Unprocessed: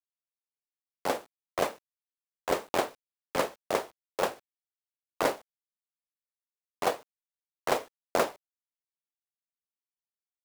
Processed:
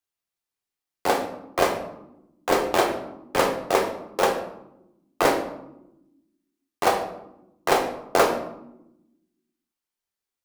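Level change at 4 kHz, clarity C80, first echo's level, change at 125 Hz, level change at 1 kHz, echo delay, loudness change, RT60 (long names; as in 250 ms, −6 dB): +8.0 dB, 11.5 dB, no echo audible, +8.5 dB, +9.0 dB, no echo audible, +8.0 dB, 0.95 s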